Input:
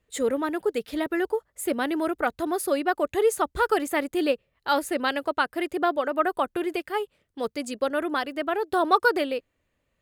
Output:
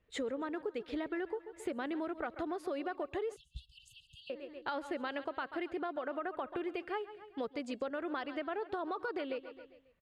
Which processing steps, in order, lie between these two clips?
low-pass filter 3,600 Hz 12 dB per octave
tuned comb filter 550 Hz, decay 0.62 s, mix 30%
repeating echo 135 ms, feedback 46%, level −18 dB
brickwall limiter −20.5 dBFS, peak gain reduction 10 dB
downward compressor 6 to 1, threshold −36 dBFS, peak gain reduction 12 dB
0:03.36–0:04.30: linear-phase brick-wall band-stop 160–2,600 Hz
level +1 dB

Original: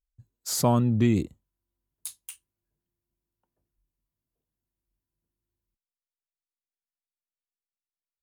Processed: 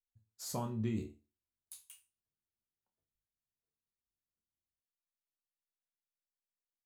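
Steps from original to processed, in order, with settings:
tempo change 1.2×
resonators tuned to a chord D2 major, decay 0.31 s
level −2.5 dB

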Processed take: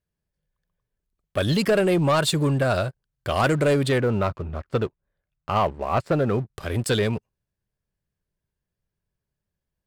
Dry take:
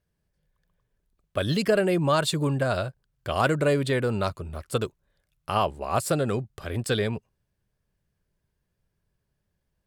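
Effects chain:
0:03.98–0:06.54: low-pass filter 2,300 Hz 12 dB per octave
leveller curve on the samples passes 2
level −3 dB

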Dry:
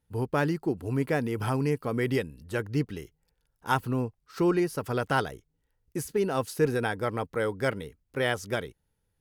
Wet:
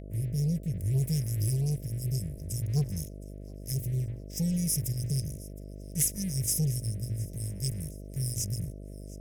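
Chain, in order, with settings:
linear-phase brick-wall band-stop 190–4,900 Hz
parametric band 3,600 Hz −7.5 dB 1.6 octaves
mains-hum notches 60/120 Hz
leveller curve on the samples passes 2
rotating-speaker cabinet horn 0.6 Hz
hum with harmonics 50 Hz, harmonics 13, −44 dBFS −5 dB per octave
high shelf with overshoot 1,600 Hz +8 dB, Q 3
feedback echo with a high-pass in the loop 715 ms, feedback 45%, level −21 dB
level +1.5 dB

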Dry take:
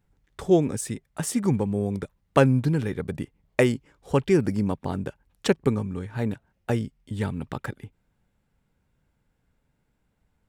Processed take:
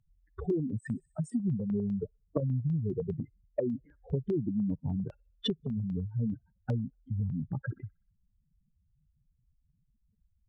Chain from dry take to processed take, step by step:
expanding power law on the bin magnitudes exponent 3.6
delay with a high-pass on its return 62 ms, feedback 44%, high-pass 2,400 Hz, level −20.5 dB
treble cut that deepens with the level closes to 330 Hz, closed at −19.5 dBFS
downward compressor, threshold −27 dBFS, peak gain reduction 9.5 dB
notch on a step sequencer 10 Hz 360–6,200 Hz

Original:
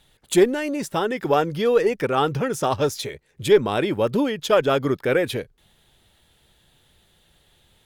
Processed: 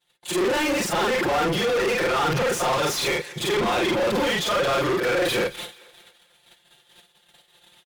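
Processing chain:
every overlapping window played backwards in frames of 105 ms
high-shelf EQ 4,400 Hz +7.5 dB
noise gate −56 dBFS, range −38 dB
comb filter 5.7 ms, depth 99%
reversed playback
downward compressor 6 to 1, threshold −31 dBFS, peak gain reduction 19.5 dB
reversed playback
mid-hump overdrive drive 32 dB, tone 3,100 Hz, clips at −22 dBFS
on a send: feedback echo with a high-pass in the loop 219 ms, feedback 46%, high-pass 420 Hz, level −19.5 dB
on the sum: level +6 dB

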